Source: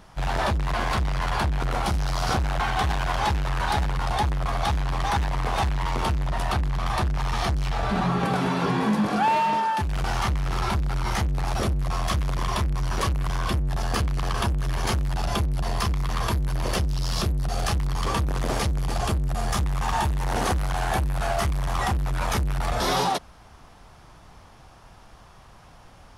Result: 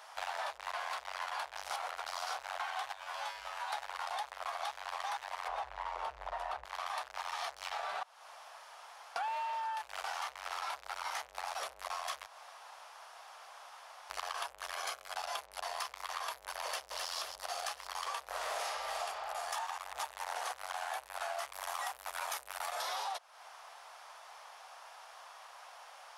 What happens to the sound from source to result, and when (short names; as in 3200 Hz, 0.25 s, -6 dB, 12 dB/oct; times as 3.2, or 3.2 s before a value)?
1.56–2.06 reverse
2.93–3.73 resonator 51 Hz, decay 0.43 s, harmonics odd, mix 90%
5.48–6.65 tilt -4 dB/oct
8.03–9.16 room tone
12.26–14.1 room tone
14.73–15.17 notch comb 920 Hz
16.64–17.09 echo throw 0.26 s, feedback 60%, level -7 dB
18.26–19.01 reverb throw, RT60 1.8 s, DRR -8 dB
19.56–20.03 reverse
21.53–22.82 high shelf 9300 Hz +11.5 dB
whole clip: inverse Chebyshev high-pass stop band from 310 Hz, stop band 40 dB; compressor, threshold -38 dBFS; gain +1 dB